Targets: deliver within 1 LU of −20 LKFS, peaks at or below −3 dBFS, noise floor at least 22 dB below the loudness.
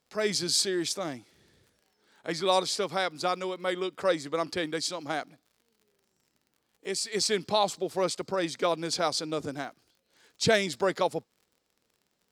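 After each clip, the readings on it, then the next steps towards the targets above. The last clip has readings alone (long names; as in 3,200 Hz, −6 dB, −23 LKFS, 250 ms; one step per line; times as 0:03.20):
crackle rate 52 per second; integrated loudness −29.0 LKFS; sample peak −9.5 dBFS; target loudness −20.0 LKFS
→ click removal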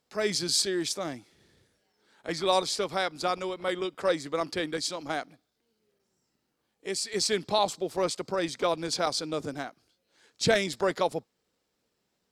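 crackle rate 0.41 per second; integrated loudness −29.0 LKFS; sample peak −10.0 dBFS; target loudness −20.0 LKFS
→ level +9 dB
brickwall limiter −3 dBFS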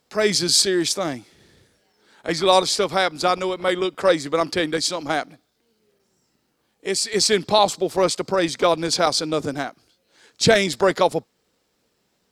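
integrated loudness −20.5 LKFS; sample peak −3.0 dBFS; background noise floor −69 dBFS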